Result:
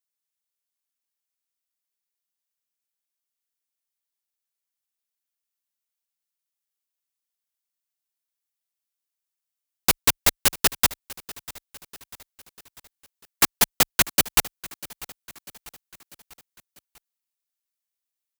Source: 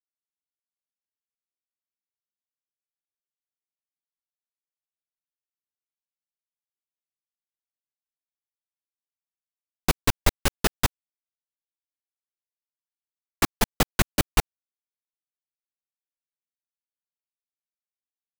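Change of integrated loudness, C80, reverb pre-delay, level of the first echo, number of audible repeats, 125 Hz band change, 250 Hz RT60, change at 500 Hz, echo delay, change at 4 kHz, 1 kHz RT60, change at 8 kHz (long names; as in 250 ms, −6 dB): +6.0 dB, no reverb audible, no reverb audible, −19.5 dB, 3, −7.0 dB, no reverb audible, −1.5 dB, 645 ms, +6.0 dB, no reverb audible, +8.5 dB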